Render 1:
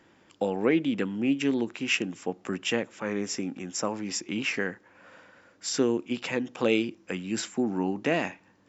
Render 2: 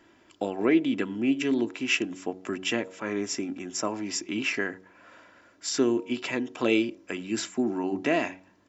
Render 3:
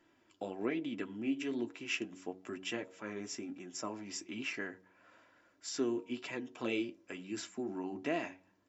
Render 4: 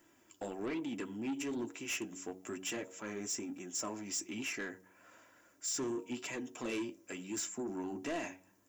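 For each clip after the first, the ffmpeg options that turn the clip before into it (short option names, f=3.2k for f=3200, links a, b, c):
-af "aecho=1:1:3:0.48,bandreject=f=93.58:t=h:w=4,bandreject=f=187.16:t=h:w=4,bandreject=f=280.74:t=h:w=4,bandreject=f=374.32:t=h:w=4,bandreject=f=467.9:t=h:w=4,bandreject=f=561.48:t=h:w=4,bandreject=f=655.06:t=h:w=4,bandreject=f=748.64:t=h:w=4,bandreject=f=842.22:t=h:w=4,bandreject=f=935.8:t=h:w=4"
-af "flanger=delay=5.5:depth=6.2:regen=-43:speed=1.1:shape=triangular,volume=-7dB"
-af "aexciter=amount=5.2:drive=3.6:freq=6k,asoftclip=type=tanh:threshold=-35dB,volume=2dB"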